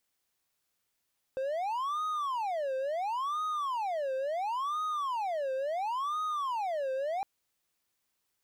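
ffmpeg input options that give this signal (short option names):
-f lavfi -i "aevalsrc='0.0398*(1-4*abs(mod((887*t-363/(2*PI*0.72)*sin(2*PI*0.72*t))+0.25,1)-0.5))':d=5.86:s=44100"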